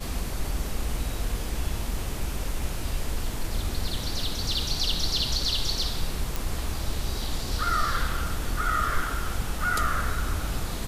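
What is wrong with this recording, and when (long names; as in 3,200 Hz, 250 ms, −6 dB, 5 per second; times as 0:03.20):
0:06.36: click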